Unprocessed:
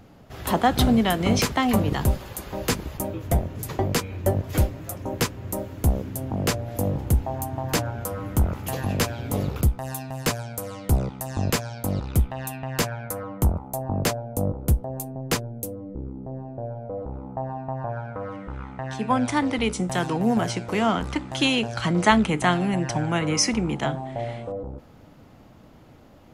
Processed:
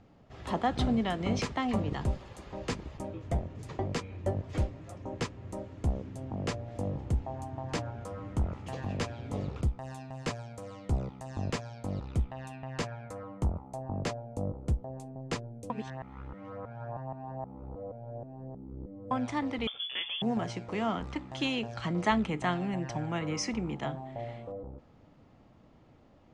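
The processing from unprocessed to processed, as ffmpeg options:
ffmpeg -i in.wav -filter_complex "[0:a]asettb=1/sr,asplit=3[link_01][link_02][link_03];[link_01]atrim=end=19.674[link_04];[link_02]atrim=start=19.67:end=20.22,asetpts=PTS-STARTPTS,afade=type=in:duration=0.004:curve=qsin,afade=type=out:start_time=0.546:duration=0.004:curve=qsin,lowpass=frequency=3100:width_type=q:width=0.5098,lowpass=frequency=3100:width_type=q:width=0.6013,lowpass=frequency=3100:width_type=q:width=0.9,lowpass=frequency=3100:width_type=q:width=2.563,afreqshift=-3600[link_05];[link_03]atrim=start=20.216[link_06];[link_04][link_05]acrossfade=duration=0.004:curve1=hsin:curve2=qsin[link_07];[link_07][link_06]acrossfade=duration=0.004:curve1=qsin:curve2=hsin,asplit=3[link_08][link_09][link_10];[link_08]atrim=end=15.702[link_11];[link_09]atrim=start=15.698:end=19.112,asetpts=PTS-STARTPTS,areverse[link_12];[link_10]atrim=start=19.108[link_13];[link_11][link_12]acrossfade=duration=0.004:curve1=hsin:curve2=hsin[link_14];[link_14][link_13]acrossfade=duration=0.004:curve1=hsin:curve2=hsin,lowpass=frequency=8200:width=0.5412,lowpass=frequency=8200:width=1.3066,highshelf=frequency=5300:gain=-8.5,bandreject=frequency=1500:width=17,volume=-9dB" out.wav

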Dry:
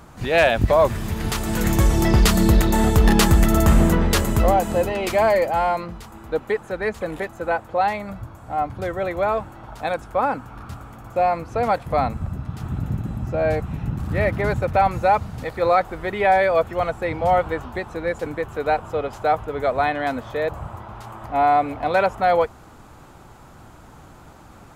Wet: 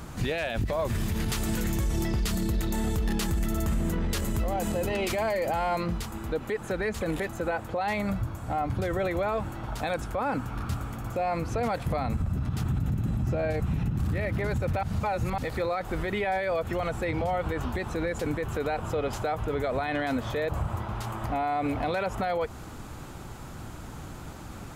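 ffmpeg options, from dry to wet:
ffmpeg -i in.wav -filter_complex "[0:a]asplit=3[link_01][link_02][link_03];[link_01]atrim=end=14.832[link_04];[link_02]atrim=start=14.828:end=15.382,asetpts=PTS-STARTPTS,areverse[link_05];[link_03]atrim=start=15.378[link_06];[link_04][link_05]acrossfade=duration=0.004:curve1=hsin:curve2=hsin[link_07];[link_07][link_06]acrossfade=duration=0.004:curve1=hsin:curve2=hsin,equalizer=frequency=850:width_type=o:width=2.1:gain=-6,acompressor=threshold=-24dB:ratio=5,alimiter=level_in=2.5dB:limit=-24dB:level=0:latency=1:release=48,volume=-2.5dB,volume=6dB" out.wav

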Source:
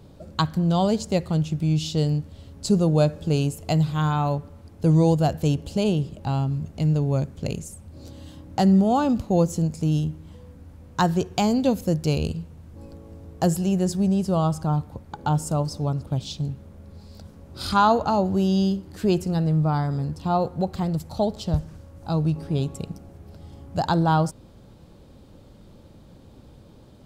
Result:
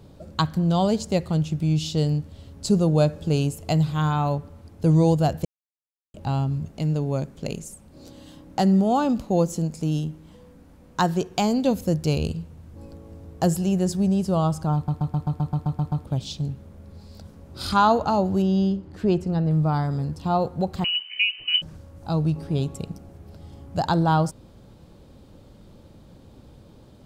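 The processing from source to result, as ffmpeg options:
ffmpeg -i in.wav -filter_complex "[0:a]asettb=1/sr,asplit=3[link_01][link_02][link_03];[link_01]atrim=end=6.684[link_04];[link_02]atrim=start=6.68:end=11.71,asetpts=PTS-STARTPTS,afade=type=in:duration=0.004:curve=qsin,afade=type=out:start_time=5.026:duration=0.004:curve=qsin,equalizer=frequency=89:width_type=o:width=0.77:gain=-13.5[link_05];[link_03]atrim=start=11.706[link_06];[link_04][link_05]acrossfade=duration=0.004:curve1=hsin:curve2=qsin[link_07];[link_07][link_06]acrossfade=duration=0.004:curve1=qsin:curve2=hsin,asettb=1/sr,asplit=3[link_08][link_09][link_10];[link_08]atrim=end=18.424[link_11];[link_09]atrim=start=18.42:end=19.51,asetpts=PTS-STARTPTS,afade=type=in:duration=0.004:curve=qsin,afade=type=out:start_time=1.086:duration=0.004:curve=qsin,aemphasis=mode=reproduction:type=75kf[link_12];[link_10]atrim=start=19.506[link_13];[link_11][link_12]acrossfade=duration=0.004:curve1=hsin:curve2=qsin[link_14];[link_14][link_13]acrossfade=duration=0.004:curve1=qsin:curve2=hsin,asettb=1/sr,asplit=3[link_15][link_16][link_17];[link_15]atrim=end=20.844[link_18];[link_16]atrim=start=20.84:end=21.62,asetpts=PTS-STARTPTS,afade=type=in:duration=0.004:curve=qsin,afade=type=out:start_time=0.776:duration=0.004:curve=qsin,lowpass=frequency=2600:width_type=q:width=0.5098,lowpass=frequency=2600:width_type=q:width=0.6013,lowpass=frequency=2600:width_type=q:width=0.9,lowpass=frequency=2600:width_type=q:width=2.563,afreqshift=-3100[link_19];[link_17]atrim=start=21.616[link_20];[link_18][link_19]acrossfade=duration=0.004:curve1=hsin:curve2=qsin[link_21];[link_21][link_20]acrossfade=duration=0.004:curve1=qsin:curve2=hsin,asplit=13[link_22][link_23][link_24][link_25][link_26][link_27][link_28][link_29][link_30][link_31][link_32][link_33][link_34];[link_22]atrim=end=5.45,asetpts=PTS-STARTPTS,afade=type=out:start_time=5.446:duration=0.004:curve=hsin[link_35];[link_23]atrim=start=5.45:end=6.14,asetpts=PTS-STARTPTS,volume=0[link_36];[link_24]atrim=start=6.14:end=14.882,asetpts=PTS-STARTPTS,afade=type=in:duration=0.004:curve=hsin[link_37];[link_25]atrim=start=14.748:end=14.882[link_38];[link_26]atrim=start=14.748:end=14.882[link_39];[link_27]atrim=start=14.748:end=14.882[link_40];[link_28]atrim=start=14.748:end=14.882[link_41];[link_29]atrim=start=14.748:end=14.882[link_42];[link_30]atrim=start=14.748:end=14.882[link_43];[link_31]atrim=start=14.748:end=14.882[link_44];[link_32]atrim=start=14.748:end=14.882[link_45];[link_33]atrim=start=14.748:end=14.882[link_46];[link_34]atrim=start=16.048[link_47];[link_35][link_36][link_37]concat=n=3:v=0:a=1[link_48];[link_48][link_38]acrossfade=duration=0.004:curve1=hsin:curve2=hsin[link_49];[link_49][link_39]acrossfade=duration=0.004:curve1=hsin:curve2=hsin[link_50];[link_50][link_40]acrossfade=duration=0.004:curve1=hsin:curve2=hsin[link_51];[link_51][link_41]acrossfade=duration=0.004:curve1=hsin:curve2=hsin[link_52];[link_52][link_42]acrossfade=duration=0.004:curve1=hsin:curve2=hsin[link_53];[link_53][link_43]acrossfade=duration=0.004:curve1=hsin:curve2=hsin[link_54];[link_54][link_44]acrossfade=duration=0.004:curve1=hsin:curve2=hsin[link_55];[link_55][link_45]acrossfade=duration=0.004:curve1=hsin:curve2=hsin[link_56];[link_56][link_46]acrossfade=duration=0.004:curve1=hsin:curve2=hsin[link_57];[link_57][link_47]acrossfade=duration=0.004:curve1=hsin:curve2=hsin" out.wav

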